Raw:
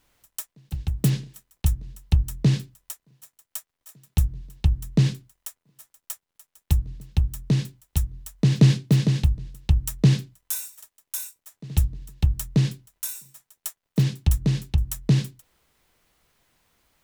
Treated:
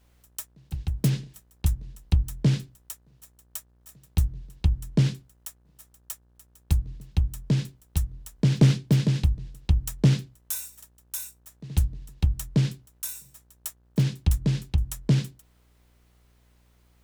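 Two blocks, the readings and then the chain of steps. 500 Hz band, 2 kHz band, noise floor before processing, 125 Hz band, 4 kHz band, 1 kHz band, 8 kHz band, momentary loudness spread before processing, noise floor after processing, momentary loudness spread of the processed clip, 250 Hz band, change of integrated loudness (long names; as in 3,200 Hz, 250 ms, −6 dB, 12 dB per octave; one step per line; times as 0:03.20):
−1.0 dB, −2.0 dB, −83 dBFS, −2.0 dB, −2.5 dB, −1.5 dB, −2.5 dB, 17 LU, −61 dBFS, 17 LU, −2.0 dB, −2.0 dB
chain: hum with harmonics 60 Hz, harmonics 30, −59 dBFS −8 dB per octave
highs frequency-modulated by the lows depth 0.62 ms
level −2 dB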